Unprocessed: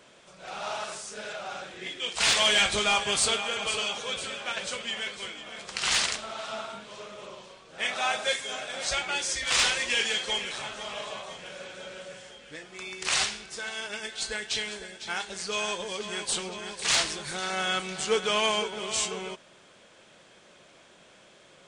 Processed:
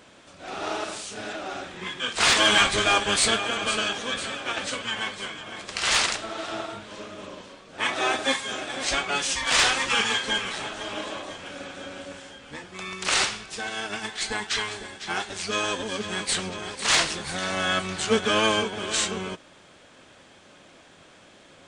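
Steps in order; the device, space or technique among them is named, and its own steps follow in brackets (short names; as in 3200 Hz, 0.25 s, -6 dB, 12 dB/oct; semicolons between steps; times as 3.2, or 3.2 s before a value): octave pedal (harmoniser -12 st -3 dB); gain +2 dB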